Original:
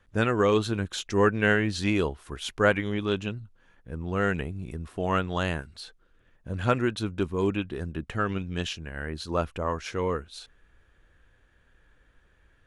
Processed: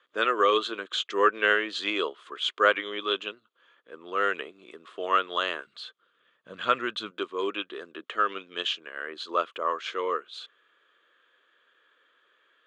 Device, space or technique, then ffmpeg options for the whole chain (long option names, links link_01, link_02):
phone speaker on a table: -filter_complex "[0:a]highpass=frequency=380:width=0.5412,highpass=frequency=380:width=1.3066,equalizer=frequency=800:width_type=q:width=4:gain=-10,equalizer=frequency=1200:width_type=q:width=4:gain=9,equalizer=frequency=3300:width_type=q:width=4:gain=10,equalizer=frequency=5600:width_type=q:width=4:gain=-10,lowpass=frequency=6700:width=0.5412,lowpass=frequency=6700:width=1.3066,asettb=1/sr,asplit=3[link_01][link_02][link_03];[link_01]atrim=end=5.674[link_04];[link_02]atrim=start=5.67:end=7.11,asetpts=PTS-STARTPTS,afade=type=in:duration=0.004:curve=qsin,afade=type=out:start_time=1.436:duration=0.004:curve=qsin,lowshelf=frequency=220:width_type=q:width=1.5:gain=12[link_05];[link_03]atrim=start=7.106[link_06];[link_04][link_05]acrossfade=duration=0.004:curve1=hsin:curve2=qsin[link_07];[link_07][link_06]acrossfade=duration=0.004:curve1=qsin:curve2=hsin"